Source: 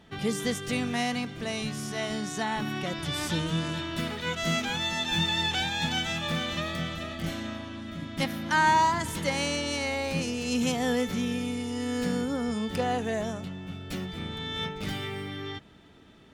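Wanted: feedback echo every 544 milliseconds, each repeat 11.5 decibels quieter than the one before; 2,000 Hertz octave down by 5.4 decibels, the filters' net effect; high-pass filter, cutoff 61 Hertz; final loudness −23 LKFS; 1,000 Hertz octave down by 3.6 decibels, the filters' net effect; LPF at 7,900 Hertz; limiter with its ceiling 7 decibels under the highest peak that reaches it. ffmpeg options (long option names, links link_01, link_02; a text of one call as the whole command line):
ffmpeg -i in.wav -af "highpass=61,lowpass=7900,equalizer=frequency=1000:width_type=o:gain=-3,equalizer=frequency=2000:width_type=o:gain=-6,alimiter=limit=-23dB:level=0:latency=1,aecho=1:1:544|1088|1632:0.266|0.0718|0.0194,volume=10dB" out.wav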